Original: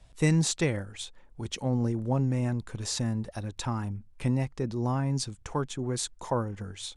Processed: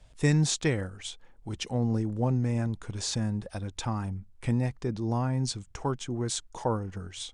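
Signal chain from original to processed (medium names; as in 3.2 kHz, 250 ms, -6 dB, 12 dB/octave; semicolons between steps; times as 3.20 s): wide varispeed 0.949×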